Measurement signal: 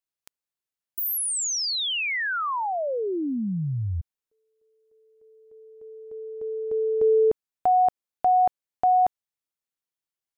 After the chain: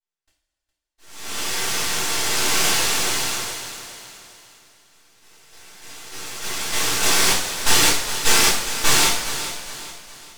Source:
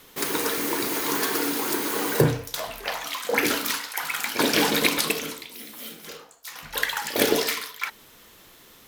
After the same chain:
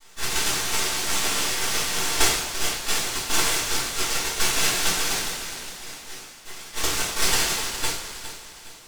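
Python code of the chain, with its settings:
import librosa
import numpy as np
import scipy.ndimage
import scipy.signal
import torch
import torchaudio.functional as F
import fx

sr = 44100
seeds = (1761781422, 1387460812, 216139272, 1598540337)

y = scipy.signal.sosfilt(scipy.signal.butter(4, 260.0, 'highpass', fs=sr, output='sos'), x)
y = fx.dynamic_eq(y, sr, hz=930.0, q=1.1, threshold_db=-37.0, ratio=5.0, max_db=7)
y = fx.rider(y, sr, range_db=3, speed_s=0.5)
y = fx.noise_vocoder(y, sr, seeds[0], bands=1)
y = np.maximum(y, 0.0)
y = fx.echo_feedback(y, sr, ms=411, feedback_pct=41, wet_db=-12)
y = fx.rev_double_slope(y, sr, seeds[1], early_s=0.46, late_s=2.6, knee_db=-15, drr_db=-9.5)
y = y * librosa.db_to_amplitude(-5.5)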